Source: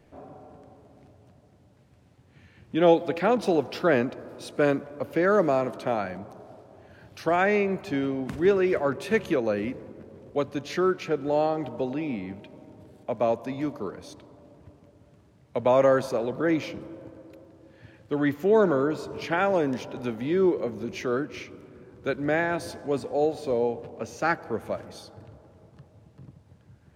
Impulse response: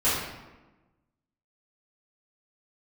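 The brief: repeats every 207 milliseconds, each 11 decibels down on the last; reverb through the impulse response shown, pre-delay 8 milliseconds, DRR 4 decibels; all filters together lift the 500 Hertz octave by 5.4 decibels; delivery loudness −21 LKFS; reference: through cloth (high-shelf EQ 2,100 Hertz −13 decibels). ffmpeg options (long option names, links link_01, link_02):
-filter_complex "[0:a]equalizer=frequency=500:width_type=o:gain=7.5,aecho=1:1:207|414|621:0.282|0.0789|0.0221,asplit=2[link_01][link_02];[1:a]atrim=start_sample=2205,adelay=8[link_03];[link_02][link_03]afir=irnorm=-1:irlink=0,volume=-18.5dB[link_04];[link_01][link_04]amix=inputs=2:normalize=0,highshelf=frequency=2100:gain=-13,volume=-1dB"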